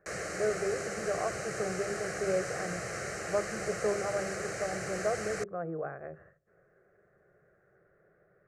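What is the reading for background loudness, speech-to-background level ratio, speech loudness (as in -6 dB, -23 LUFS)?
-37.0 LUFS, 1.5 dB, -35.5 LUFS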